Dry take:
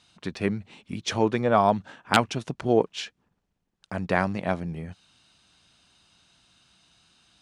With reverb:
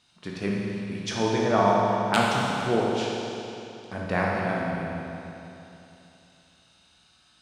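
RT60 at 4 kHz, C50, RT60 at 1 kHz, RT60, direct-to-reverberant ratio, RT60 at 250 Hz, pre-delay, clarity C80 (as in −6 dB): 2.8 s, −2.5 dB, 3.0 s, 3.0 s, −4.5 dB, 3.0 s, 17 ms, −0.5 dB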